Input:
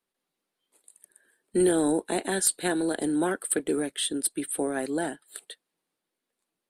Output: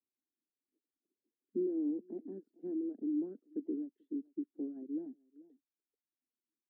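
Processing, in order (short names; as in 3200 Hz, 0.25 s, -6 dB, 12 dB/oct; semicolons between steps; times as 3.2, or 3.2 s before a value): Butterworth band-pass 280 Hz, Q 2.3; echo 0.437 s -18.5 dB; reverb removal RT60 0.8 s; gain -6 dB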